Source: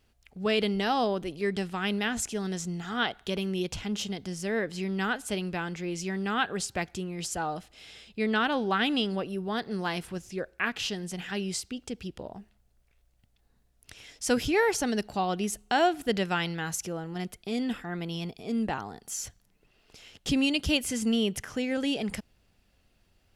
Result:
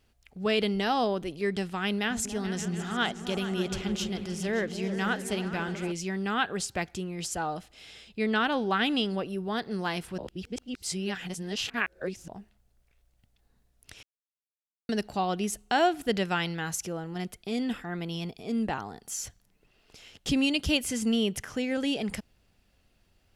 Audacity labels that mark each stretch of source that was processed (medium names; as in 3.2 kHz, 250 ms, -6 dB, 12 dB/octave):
1.960000	5.920000	delay with an opening low-pass 143 ms, low-pass from 200 Hz, each repeat up 2 oct, level -6 dB
10.180000	12.280000	reverse
14.030000	14.890000	mute